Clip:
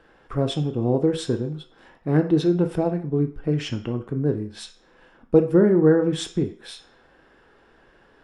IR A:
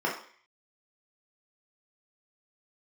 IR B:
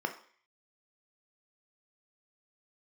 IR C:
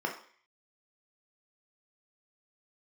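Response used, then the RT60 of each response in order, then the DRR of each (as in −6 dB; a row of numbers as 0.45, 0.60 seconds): B; 0.50, 0.50, 0.50 seconds; −4.0, 5.5, 1.0 decibels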